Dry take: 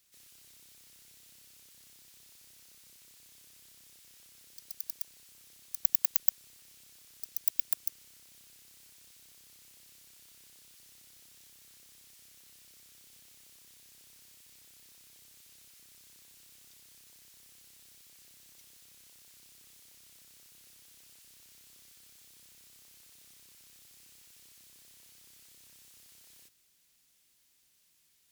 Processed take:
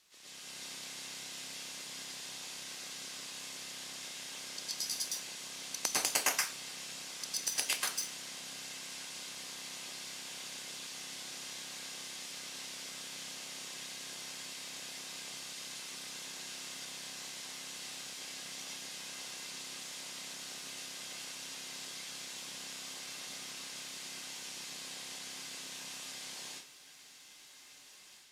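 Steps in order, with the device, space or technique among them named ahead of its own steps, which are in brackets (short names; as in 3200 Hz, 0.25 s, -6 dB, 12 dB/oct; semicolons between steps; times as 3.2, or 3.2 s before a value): filmed off a television (BPF 270–6500 Hz; bell 950 Hz +4 dB 0.54 oct; reverb RT60 0.30 s, pre-delay 0.102 s, DRR -6.5 dB; white noise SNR 25 dB; AGC gain up to 6.5 dB; gain +5 dB; AAC 96 kbps 32000 Hz)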